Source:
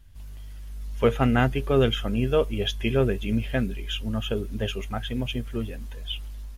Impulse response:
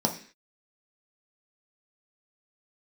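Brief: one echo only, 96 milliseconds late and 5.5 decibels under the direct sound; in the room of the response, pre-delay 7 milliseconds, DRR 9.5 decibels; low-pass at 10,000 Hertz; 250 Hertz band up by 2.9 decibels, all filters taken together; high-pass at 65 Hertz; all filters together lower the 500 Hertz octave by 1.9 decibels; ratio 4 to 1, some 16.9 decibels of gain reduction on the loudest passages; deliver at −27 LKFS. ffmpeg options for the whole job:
-filter_complex "[0:a]highpass=65,lowpass=10000,equalizer=frequency=250:width_type=o:gain=4,equalizer=frequency=500:width_type=o:gain=-3.5,acompressor=threshold=-37dB:ratio=4,aecho=1:1:96:0.531,asplit=2[link_01][link_02];[1:a]atrim=start_sample=2205,adelay=7[link_03];[link_02][link_03]afir=irnorm=-1:irlink=0,volume=-19.5dB[link_04];[link_01][link_04]amix=inputs=2:normalize=0,volume=11dB"

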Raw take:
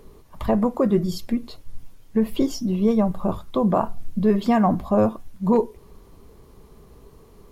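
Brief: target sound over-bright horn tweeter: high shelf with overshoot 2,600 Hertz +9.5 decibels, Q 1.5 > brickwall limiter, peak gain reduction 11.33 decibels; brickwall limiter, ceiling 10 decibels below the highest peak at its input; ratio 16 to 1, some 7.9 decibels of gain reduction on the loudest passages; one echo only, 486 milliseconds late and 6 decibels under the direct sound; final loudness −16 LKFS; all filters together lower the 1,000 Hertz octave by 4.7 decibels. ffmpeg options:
ffmpeg -i in.wav -af "equalizer=frequency=1000:width_type=o:gain=-5.5,acompressor=threshold=-22dB:ratio=16,alimiter=limit=-24dB:level=0:latency=1,highshelf=frequency=2600:width_type=q:width=1.5:gain=9.5,aecho=1:1:486:0.501,volume=19.5dB,alimiter=limit=-6.5dB:level=0:latency=1" out.wav

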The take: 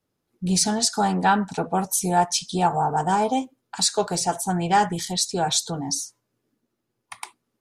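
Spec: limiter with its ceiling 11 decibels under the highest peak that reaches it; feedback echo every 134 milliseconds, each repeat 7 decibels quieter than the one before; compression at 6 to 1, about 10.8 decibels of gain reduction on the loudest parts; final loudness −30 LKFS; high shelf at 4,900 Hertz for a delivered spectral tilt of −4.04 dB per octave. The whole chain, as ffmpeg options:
ffmpeg -i in.wav -af "highshelf=frequency=4900:gain=-7,acompressor=threshold=-26dB:ratio=6,alimiter=level_in=2dB:limit=-24dB:level=0:latency=1,volume=-2dB,aecho=1:1:134|268|402|536|670:0.447|0.201|0.0905|0.0407|0.0183,volume=4dB" out.wav

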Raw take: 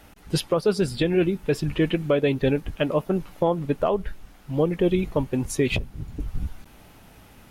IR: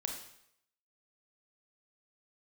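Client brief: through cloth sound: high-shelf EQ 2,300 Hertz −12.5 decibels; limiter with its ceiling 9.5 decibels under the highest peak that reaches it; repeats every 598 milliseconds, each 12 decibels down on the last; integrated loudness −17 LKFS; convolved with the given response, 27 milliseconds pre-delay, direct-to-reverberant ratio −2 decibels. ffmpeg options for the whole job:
-filter_complex "[0:a]alimiter=limit=-19.5dB:level=0:latency=1,aecho=1:1:598|1196|1794:0.251|0.0628|0.0157,asplit=2[link_01][link_02];[1:a]atrim=start_sample=2205,adelay=27[link_03];[link_02][link_03]afir=irnorm=-1:irlink=0,volume=1dB[link_04];[link_01][link_04]amix=inputs=2:normalize=0,highshelf=frequency=2300:gain=-12.5,volume=9.5dB"

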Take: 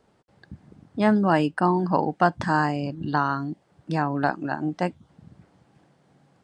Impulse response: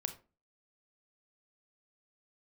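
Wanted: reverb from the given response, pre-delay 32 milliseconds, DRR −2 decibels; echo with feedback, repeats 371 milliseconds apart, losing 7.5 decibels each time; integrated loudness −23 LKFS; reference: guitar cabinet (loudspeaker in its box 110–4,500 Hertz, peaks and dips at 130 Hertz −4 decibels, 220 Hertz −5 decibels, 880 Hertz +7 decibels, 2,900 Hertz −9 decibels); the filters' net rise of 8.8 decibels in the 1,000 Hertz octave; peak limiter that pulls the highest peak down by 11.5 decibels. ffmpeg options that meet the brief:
-filter_complex "[0:a]equalizer=frequency=1000:width_type=o:gain=5.5,alimiter=limit=-14dB:level=0:latency=1,aecho=1:1:371|742|1113|1484|1855:0.422|0.177|0.0744|0.0312|0.0131,asplit=2[link_01][link_02];[1:a]atrim=start_sample=2205,adelay=32[link_03];[link_02][link_03]afir=irnorm=-1:irlink=0,volume=2.5dB[link_04];[link_01][link_04]amix=inputs=2:normalize=0,highpass=110,equalizer=frequency=130:width_type=q:width=4:gain=-4,equalizer=frequency=220:width_type=q:width=4:gain=-5,equalizer=frequency=880:width_type=q:width=4:gain=7,equalizer=frequency=2900:width_type=q:width=4:gain=-9,lowpass=frequency=4500:width=0.5412,lowpass=frequency=4500:width=1.3066,volume=-3dB"

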